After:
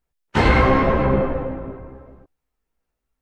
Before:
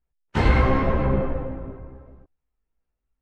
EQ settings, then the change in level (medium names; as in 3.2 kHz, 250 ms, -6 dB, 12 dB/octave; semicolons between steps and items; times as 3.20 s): bass shelf 140 Hz -8 dB; +6.5 dB